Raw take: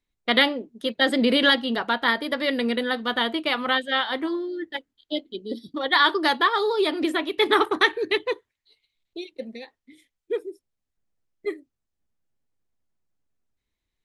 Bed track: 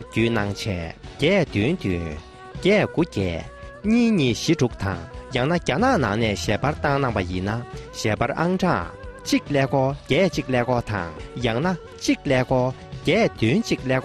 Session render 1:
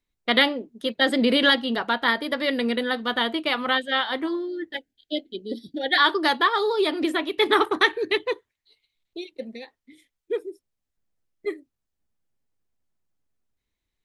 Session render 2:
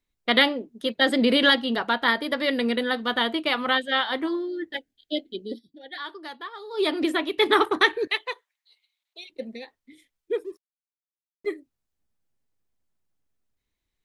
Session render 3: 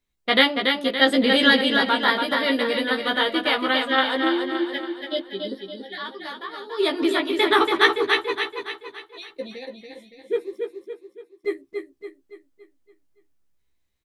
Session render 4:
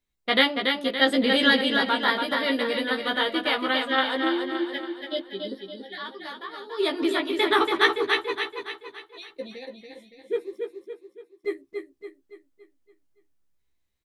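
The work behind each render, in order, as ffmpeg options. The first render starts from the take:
-filter_complex "[0:a]asettb=1/sr,asplit=3[a][b][c];[a]atrim=end=4.744[d];[b]atrim=start=4.74:end=5.98,asetpts=PTS-STARTPTS,afade=t=in:d=0.004:c=qsin,afade=t=out:st=1.236:d=0.004:c=qsin,asuperstop=centerf=1100:order=20:qfactor=1.8[e];[c]atrim=start=5.976[f];[d][e]acrossfade=d=0.004:c1=hsin:c2=qsin[g];[g][f]acrossfade=d=0.004:c1=qsin:c2=hsin"
-filter_complex "[0:a]asettb=1/sr,asplit=3[a][b][c];[a]atrim=end=8.074[d];[b]atrim=start=8.07:end=9.3,asetpts=PTS-STARTPTS,afade=t=in:d=0.004:c=qsin,afade=t=out:st=1.226:d=0.004:c=qsin,highpass=f=650:w=0.5412,highpass=f=650:w=1.3066[e];[c]atrim=start=9.296[f];[d][e]acrossfade=d=0.004:c1=hsin:c2=qsin[g];[g][f]acrossfade=d=0.004:c1=qsin:c2=hsin,asettb=1/sr,asplit=3[h][i][j];[h]atrim=end=10.444[k];[i]atrim=start=10.44:end=11.5,asetpts=PTS-STARTPTS,afade=t=in:d=0.004:c=qsin,afade=t=out:st=1.056:d=0.004:c=qsin,aeval=exprs='sgn(val(0))*max(abs(val(0))-0.00126,0)':c=same[l];[j]atrim=start=11.496[m];[k][l]acrossfade=d=0.004:c1=hsin:c2=qsin[n];[n][m]acrossfade=d=0.004:c1=qsin:c2=hsin,asplit=3[o][p][q];[o]atrim=end=5.62,asetpts=PTS-STARTPTS,afade=t=out:st=5.47:d=0.15:silence=0.141254[r];[p]atrim=start=5.62:end=6.7,asetpts=PTS-STARTPTS,volume=-17dB[s];[q]atrim=start=6.7,asetpts=PTS-STARTPTS,afade=t=in:d=0.15:silence=0.141254[t];[r][s][t]concat=n=3:v=0:a=1"
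-filter_complex "[0:a]asplit=2[a][b];[b]adelay=15,volume=-3dB[c];[a][c]amix=inputs=2:normalize=0,aecho=1:1:283|566|849|1132|1415|1698:0.562|0.264|0.124|0.0584|0.0274|0.0129"
-af "volume=-3dB"

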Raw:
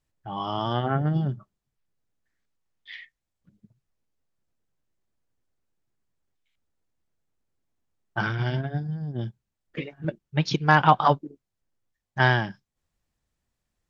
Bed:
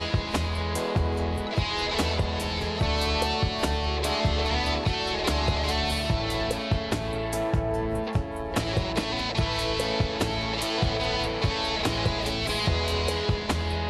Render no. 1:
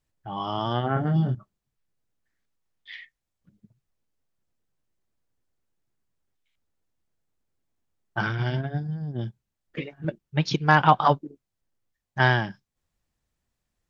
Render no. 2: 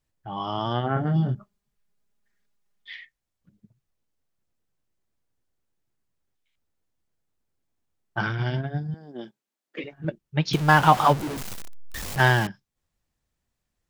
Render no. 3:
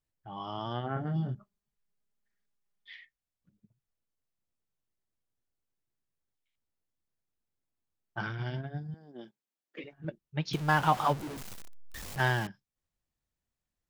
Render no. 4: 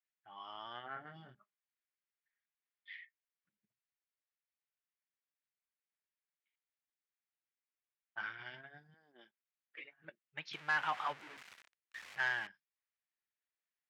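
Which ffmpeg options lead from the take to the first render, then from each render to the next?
-filter_complex "[0:a]asettb=1/sr,asplit=3[a][b][c];[a]atrim=end=0.944[d];[b]atrim=start=0.94:end=1.35,asetpts=PTS-STARTPTS,afade=t=in:d=0.004:c=qsin,afade=t=out:st=0.406:d=0.004:c=qsin,asplit=2[e][f];[f]adelay=24,volume=-3dB[g];[e][g]amix=inputs=2:normalize=0,atrim=end_sample=18081[h];[c]atrim=start=1.346[i];[d][h]acrossfade=d=0.004:c1=hsin:c2=qsin[j];[j][i]acrossfade=d=0.004:c1=qsin:c2=hsin"
-filter_complex "[0:a]asettb=1/sr,asplit=3[a][b][c];[a]atrim=end=1.354[d];[b]atrim=start=1.35:end=2.93,asetpts=PTS-STARTPTS,afade=t=in:d=0.004:c=qsin,afade=t=out:st=1.576:d=0.004:c=qsin,aecho=1:1:4.9:0.97,atrim=end_sample=69678[e];[c]atrim=start=2.926[f];[d][e]acrossfade=d=0.004:c1=hsin:c2=qsin[g];[g][f]acrossfade=d=0.004:c1=qsin:c2=hsin,asettb=1/sr,asplit=3[h][i][j];[h]atrim=end=8.944[k];[i]atrim=start=8.94:end=9.84,asetpts=PTS-STARTPTS,afade=t=in:d=0.004:c=qsin,afade=t=out:st=0.896:d=0.004:c=qsin,highpass=f=250:w=0.5412,highpass=f=250:w=1.3066[l];[j]atrim=start=9.836[m];[k][l]acrossfade=d=0.004:c1=hsin:c2=qsin[n];[n][m]acrossfade=d=0.004:c1=qsin:c2=hsin,asettb=1/sr,asplit=3[o][p][q];[o]atrim=end=10.534[r];[p]atrim=start=10.53:end=12.47,asetpts=PTS-STARTPTS,afade=t=in:d=0.004:c=qsin,afade=t=out:st=1.936:d=0.004:c=qsin,aeval=exprs='val(0)+0.5*0.0501*sgn(val(0))':c=same[s];[q]atrim=start=12.466[t];[r][s]acrossfade=d=0.004:c1=hsin:c2=qsin[u];[u][t]acrossfade=d=0.004:c1=qsin:c2=hsin"
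-af "volume=-9dB"
-af "bandpass=f=2k:t=q:w=1.7:csg=0,asoftclip=type=tanh:threshold=-24.5dB"

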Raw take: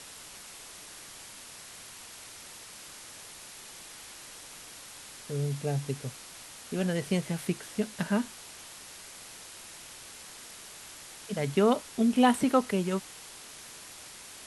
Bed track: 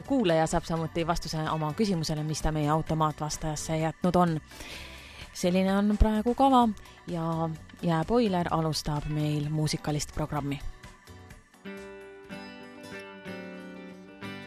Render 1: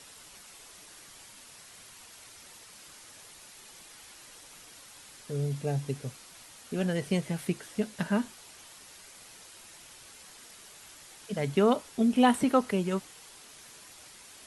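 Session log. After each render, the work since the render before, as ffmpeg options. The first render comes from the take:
-af "afftdn=nr=6:nf=-48"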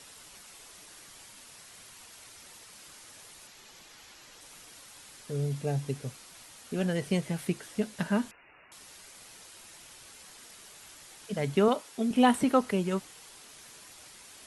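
-filter_complex "[0:a]asettb=1/sr,asplit=3[a][b][c];[a]atrim=end=3.474[d];[b]atrim=start=3.47:end=4.41,asetpts=PTS-STARTPTS,afade=t=in:d=0.004:c=qsin,afade=t=out:st=0.936:d=0.004:c=qsin,equalizer=f=9.6k:t=o:w=0.37:g=-12[e];[c]atrim=start=4.406[f];[d][e]acrossfade=d=0.004:c1=hsin:c2=qsin[g];[g][f]acrossfade=d=0.004:c1=qsin:c2=hsin,asettb=1/sr,asplit=3[h][i][j];[h]atrim=end=8.314[k];[i]atrim=start=8.31:end=8.72,asetpts=PTS-STARTPTS,afade=t=in:d=0.004:c=qsin,afade=t=out:st=0.406:d=0.004:c=qsin,lowpass=f=2.5k:t=q:w=0.5098,lowpass=f=2.5k:t=q:w=0.6013,lowpass=f=2.5k:t=q:w=0.9,lowpass=f=2.5k:t=q:w=2.563,afreqshift=-2900[l];[j]atrim=start=8.716[m];[k][l]acrossfade=d=0.004:c1=hsin:c2=qsin[n];[n][m]acrossfade=d=0.004:c1=qsin:c2=hsin,asettb=1/sr,asplit=3[o][p][q];[o]atrim=end=11.684[r];[p]atrim=start=11.68:end=12.11,asetpts=PTS-STARTPTS,afade=t=in:d=0.004:c=qsin,afade=t=out:st=0.426:d=0.004:c=qsin,highpass=f=330:p=1[s];[q]atrim=start=12.106[t];[r][s]acrossfade=d=0.004:c1=hsin:c2=qsin[u];[u][t]acrossfade=d=0.004:c1=qsin:c2=hsin"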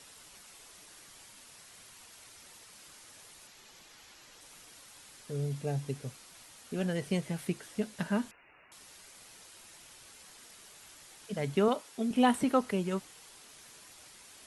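-af "volume=-3dB"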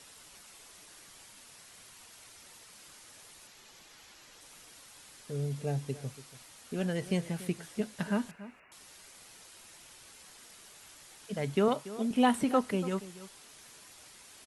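-filter_complex "[0:a]asplit=2[a][b];[b]adelay=285.7,volume=-16dB,highshelf=f=4k:g=-6.43[c];[a][c]amix=inputs=2:normalize=0"

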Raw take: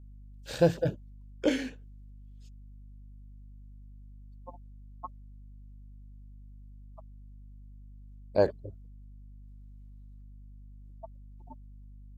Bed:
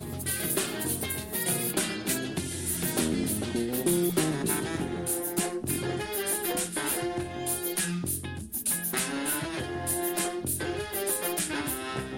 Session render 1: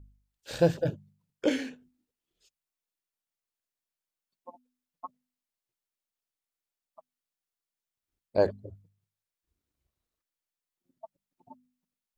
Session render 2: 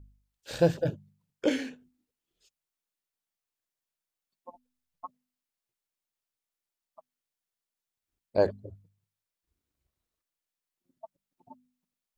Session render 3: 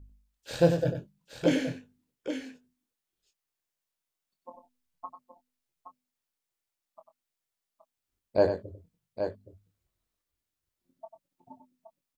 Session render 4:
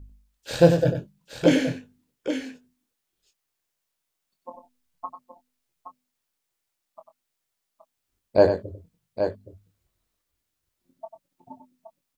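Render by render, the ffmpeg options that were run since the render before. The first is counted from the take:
-af "bandreject=f=50:t=h:w=4,bandreject=f=100:t=h:w=4,bandreject=f=150:t=h:w=4,bandreject=f=200:t=h:w=4,bandreject=f=250:t=h:w=4"
-filter_complex "[0:a]asplit=3[a][b][c];[a]afade=t=out:st=4.49:d=0.02[d];[b]asubboost=boost=8.5:cutoff=87,afade=t=in:st=4.49:d=0.02,afade=t=out:st=5.05:d=0.02[e];[c]afade=t=in:st=5.05:d=0.02[f];[d][e][f]amix=inputs=3:normalize=0"
-filter_complex "[0:a]asplit=2[a][b];[b]adelay=23,volume=-8dB[c];[a][c]amix=inputs=2:normalize=0,aecho=1:1:95|821:0.355|0.376"
-af "volume=6.5dB"

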